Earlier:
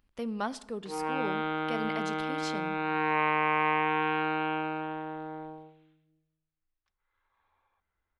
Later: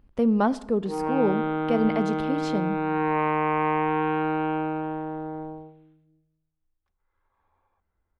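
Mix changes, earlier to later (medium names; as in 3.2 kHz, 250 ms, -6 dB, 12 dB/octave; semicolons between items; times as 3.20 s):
speech +6.0 dB; master: add tilt shelf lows +8.5 dB, about 1.3 kHz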